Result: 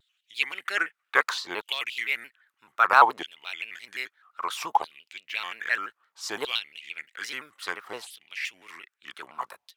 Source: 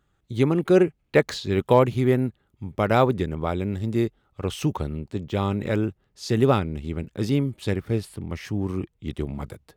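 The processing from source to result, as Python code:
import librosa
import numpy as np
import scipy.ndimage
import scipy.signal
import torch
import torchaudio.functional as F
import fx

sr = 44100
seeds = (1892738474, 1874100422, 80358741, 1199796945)

y = fx.filter_lfo_highpass(x, sr, shape='saw_down', hz=0.62, low_hz=860.0, high_hz=3300.0, q=4.7)
y = fx.vibrato_shape(y, sr, shape='square', rate_hz=5.8, depth_cents=160.0)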